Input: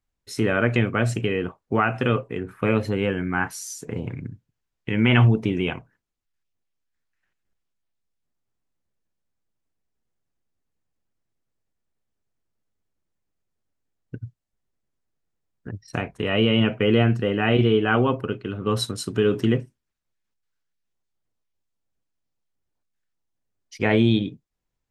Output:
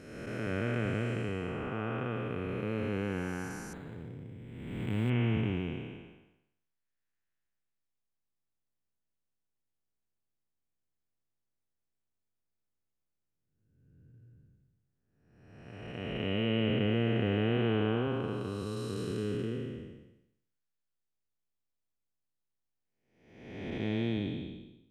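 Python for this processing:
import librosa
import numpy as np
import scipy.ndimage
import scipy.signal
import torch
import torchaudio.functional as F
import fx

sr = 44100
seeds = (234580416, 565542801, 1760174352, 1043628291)

y = fx.spec_blur(x, sr, span_ms=629.0)
y = fx.resample_linear(y, sr, factor=8, at=(3.73, 5.1))
y = y * 10.0 ** (-7.0 / 20.0)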